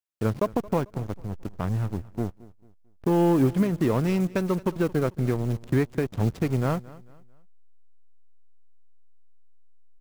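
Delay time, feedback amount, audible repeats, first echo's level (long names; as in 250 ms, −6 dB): 222 ms, 35%, 2, −20.5 dB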